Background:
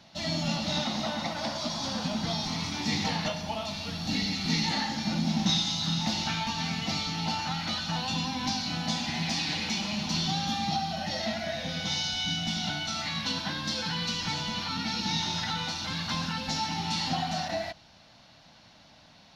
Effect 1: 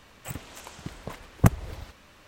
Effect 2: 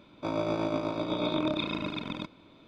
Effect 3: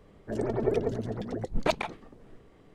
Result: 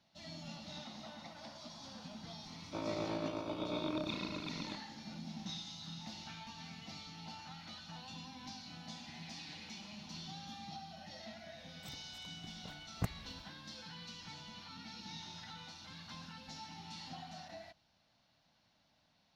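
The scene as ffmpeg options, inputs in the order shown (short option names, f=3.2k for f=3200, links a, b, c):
-filter_complex "[0:a]volume=-18.5dB[a];[2:a]atrim=end=2.67,asetpts=PTS-STARTPTS,volume=-9dB,afade=t=in:d=0.004:c=hsin,afade=t=out:st=2.666:d=0.004:c=hsin,adelay=2500[b];[1:a]atrim=end=2.27,asetpts=PTS-STARTPTS,volume=-18dB,afade=t=in:d=0.004:c=hsin,afade=t=out:st=2.266:d=0.004:c=hsin,adelay=11580[c];[a][b][c]amix=inputs=3:normalize=0"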